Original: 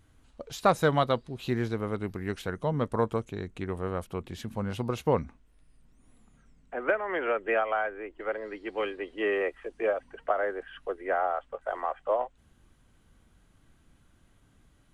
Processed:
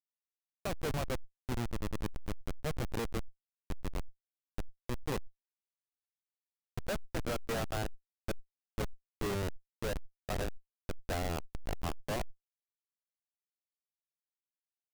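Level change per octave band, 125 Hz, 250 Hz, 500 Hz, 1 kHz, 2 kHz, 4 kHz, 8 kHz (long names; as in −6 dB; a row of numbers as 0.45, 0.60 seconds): −4.5 dB, −7.5 dB, −12.0 dB, −12.5 dB, −11.0 dB, −2.5 dB, can't be measured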